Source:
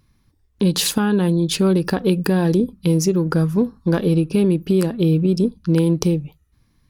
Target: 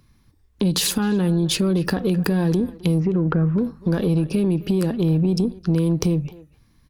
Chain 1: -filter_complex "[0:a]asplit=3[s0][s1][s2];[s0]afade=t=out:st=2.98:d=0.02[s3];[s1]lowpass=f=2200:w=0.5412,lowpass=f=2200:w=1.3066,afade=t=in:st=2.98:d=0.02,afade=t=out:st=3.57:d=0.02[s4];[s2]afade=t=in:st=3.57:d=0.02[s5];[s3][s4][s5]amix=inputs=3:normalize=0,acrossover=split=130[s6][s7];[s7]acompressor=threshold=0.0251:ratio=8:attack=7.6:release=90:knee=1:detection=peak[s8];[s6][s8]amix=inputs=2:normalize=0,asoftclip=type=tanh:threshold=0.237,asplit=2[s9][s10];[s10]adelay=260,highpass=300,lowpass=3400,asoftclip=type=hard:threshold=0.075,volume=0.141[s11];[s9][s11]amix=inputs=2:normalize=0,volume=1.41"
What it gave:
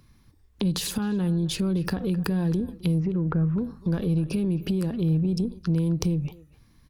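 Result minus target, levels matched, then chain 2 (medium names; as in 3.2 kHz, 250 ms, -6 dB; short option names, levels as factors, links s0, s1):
compression: peak gain reduction +9.5 dB
-filter_complex "[0:a]asplit=3[s0][s1][s2];[s0]afade=t=out:st=2.98:d=0.02[s3];[s1]lowpass=f=2200:w=0.5412,lowpass=f=2200:w=1.3066,afade=t=in:st=2.98:d=0.02,afade=t=out:st=3.57:d=0.02[s4];[s2]afade=t=in:st=3.57:d=0.02[s5];[s3][s4][s5]amix=inputs=3:normalize=0,acrossover=split=130[s6][s7];[s7]acompressor=threshold=0.0891:ratio=8:attack=7.6:release=90:knee=1:detection=peak[s8];[s6][s8]amix=inputs=2:normalize=0,asoftclip=type=tanh:threshold=0.237,asplit=2[s9][s10];[s10]adelay=260,highpass=300,lowpass=3400,asoftclip=type=hard:threshold=0.075,volume=0.141[s11];[s9][s11]amix=inputs=2:normalize=0,volume=1.41"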